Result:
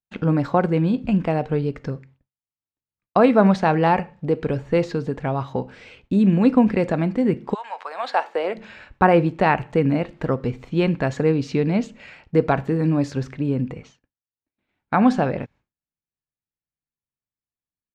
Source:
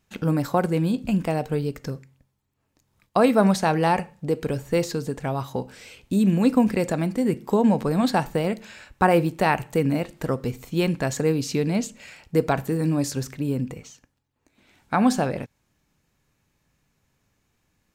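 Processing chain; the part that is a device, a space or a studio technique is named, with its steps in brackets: 7.53–8.54 s: high-pass 1.2 kHz -> 330 Hz 24 dB/octave; hearing-loss simulation (low-pass 2.9 kHz 12 dB/octave; expander -47 dBFS); trim +3 dB

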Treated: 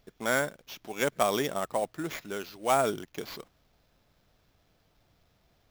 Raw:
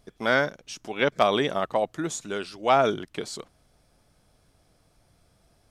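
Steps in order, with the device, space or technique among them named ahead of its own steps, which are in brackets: early companding sampler (sample-rate reducer 9 kHz, jitter 0%; companded quantiser 6-bit); trim -5 dB

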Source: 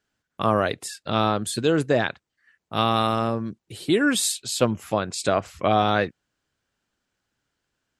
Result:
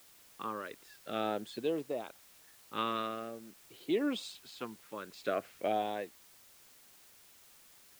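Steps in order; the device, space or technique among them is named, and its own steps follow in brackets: shortwave radio (band-pass 300–2700 Hz; tremolo 0.73 Hz, depth 62%; LFO notch saw up 0.46 Hz 480–1900 Hz; white noise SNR 21 dB); trim -7.5 dB

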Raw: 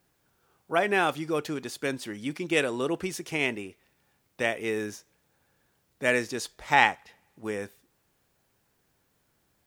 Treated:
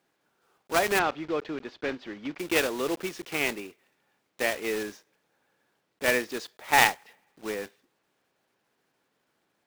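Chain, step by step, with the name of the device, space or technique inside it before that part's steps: early digital voice recorder (band-pass 240–4000 Hz; block-companded coder 3-bit); 0.99–2.39 s: distance through air 200 m

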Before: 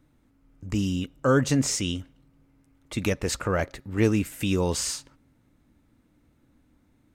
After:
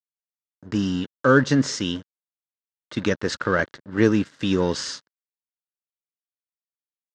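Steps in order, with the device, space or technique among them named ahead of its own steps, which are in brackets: blown loudspeaker (crossover distortion -41 dBFS; cabinet simulation 140–5500 Hz, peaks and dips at 740 Hz -8 dB, 1.6 kHz +7 dB, 2.4 kHz -9 dB); trim +5.5 dB

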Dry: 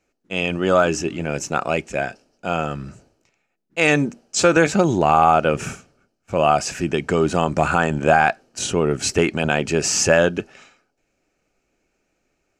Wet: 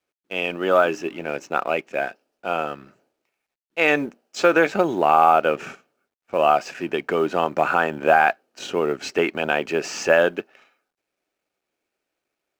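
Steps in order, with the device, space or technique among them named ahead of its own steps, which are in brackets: phone line with mismatched companding (band-pass 330–3300 Hz; companding laws mixed up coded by A)

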